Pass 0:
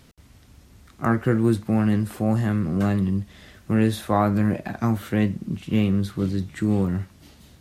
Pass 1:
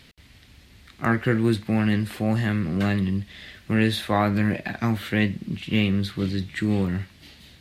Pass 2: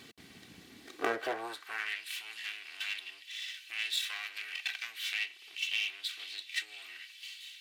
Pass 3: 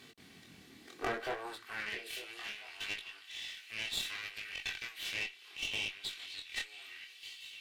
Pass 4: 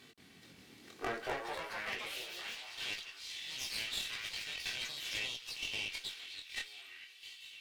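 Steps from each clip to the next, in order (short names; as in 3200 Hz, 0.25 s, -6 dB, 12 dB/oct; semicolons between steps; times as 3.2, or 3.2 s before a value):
band shelf 2800 Hz +9.5 dB; gain -1.5 dB
minimum comb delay 2.6 ms; compressor, threshold -29 dBFS, peak gain reduction 10.5 dB; high-pass sweep 190 Hz -> 2700 Hz, 0.67–2.04
delay with a stepping band-pass 0.449 s, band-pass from 150 Hz, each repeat 1.4 oct, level -9 dB; chorus 0.67 Hz, delay 19.5 ms, depth 6.8 ms; tube stage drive 29 dB, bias 0.6; gain +3 dB
echoes that change speed 0.418 s, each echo +3 st, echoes 3; gain -2.5 dB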